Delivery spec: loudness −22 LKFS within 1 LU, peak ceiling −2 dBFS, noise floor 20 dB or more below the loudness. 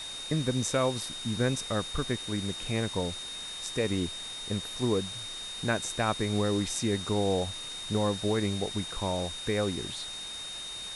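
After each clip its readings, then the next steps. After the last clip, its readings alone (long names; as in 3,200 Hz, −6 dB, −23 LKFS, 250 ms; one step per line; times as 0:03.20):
interfering tone 3,700 Hz; level of the tone −38 dBFS; background noise floor −40 dBFS; target noise floor −51 dBFS; integrated loudness −31.0 LKFS; sample peak −14.0 dBFS; target loudness −22.0 LKFS
→ notch filter 3,700 Hz, Q 30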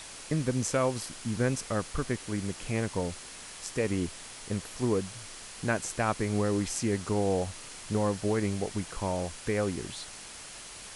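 interfering tone none found; background noise floor −45 dBFS; target noise floor −52 dBFS
→ broadband denoise 7 dB, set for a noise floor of −45 dBFS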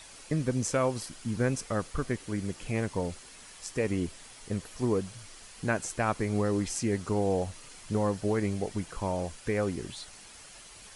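background noise floor −50 dBFS; target noise floor −52 dBFS
→ broadband denoise 6 dB, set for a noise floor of −50 dBFS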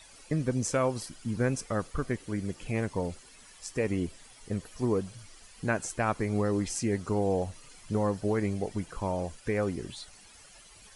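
background noise floor −54 dBFS; integrated loudness −31.5 LKFS; sample peak −14.0 dBFS; target loudness −22.0 LKFS
→ level +9.5 dB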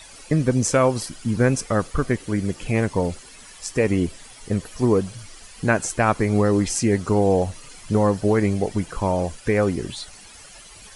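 integrated loudness −22.0 LKFS; sample peak −4.5 dBFS; background noise floor −45 dBFS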